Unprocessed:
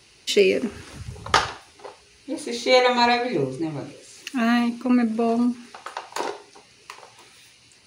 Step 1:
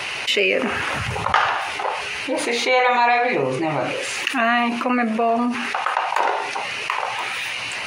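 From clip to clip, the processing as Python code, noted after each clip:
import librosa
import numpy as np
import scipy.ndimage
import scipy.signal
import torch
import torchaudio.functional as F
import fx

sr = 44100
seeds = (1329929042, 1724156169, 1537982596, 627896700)

y = scipy.signal.sosfilt(scipy.signal.butter(2, 94.0, 'highpass', fs=sr, output='sos'), x)
y = fx.band_shelf(y, sr, hz=1300.0, db=14.0, octaves=2.8)
y = fx.env_flatten(y, sr, amount_pct=70)
y = y * 10.0 ** (-14.0 / 20.0)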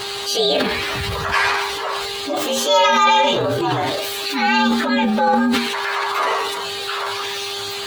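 y = fx.partial_stretch(x, sr, pct=118)
y = fx.dmg_buzz(y, sr, base_hz=400.0, harmonics=4, level_db=-37.0, tilt_db=-6, odd_only=False)
y = fx.transient(y, sr, attack_db=-2, sustain_db=10)
y = y * 10.0 ** (4.0 / 20.0)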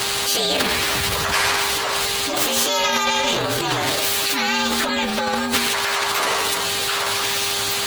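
y = fx.spectral_comp(x, sr, ratio=2.0)
y = y * 10.0 ** (1.5 / 20.0)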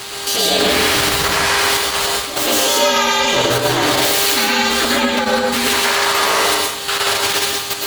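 y = fx.level_steps(x, sr, step_db=11)
y = fx.rev_plate(y, sr, seeds[0], rt60_s=0.57, hf_ratio=0.85, predelay_ms=95, drr_db=-1.0)
y = y * 10.0 ** (3.5 / 20.0)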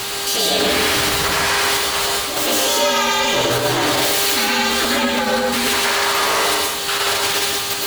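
y = x + 0.5 * 10.0 ** (-17.5 / 20.0) * np.sign(x)
y = y * 10.0 ** (-4.5 / 20.0)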